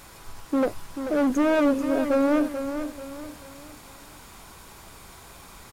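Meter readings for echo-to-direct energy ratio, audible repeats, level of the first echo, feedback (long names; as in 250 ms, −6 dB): −8.5 dB, 4, −9.0 dB, 38%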